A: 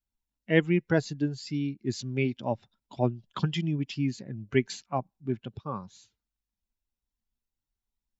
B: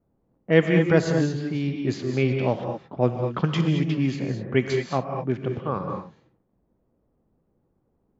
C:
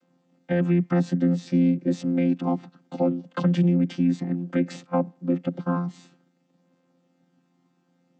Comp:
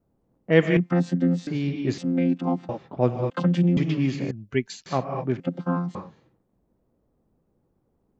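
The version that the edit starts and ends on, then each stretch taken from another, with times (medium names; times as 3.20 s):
B
0.77–1.47 s: from C
1.98–2.69 s: from C
3.30–3.77 s: from C
4.31–4.86 s: from A
5.40–5.95 s: from C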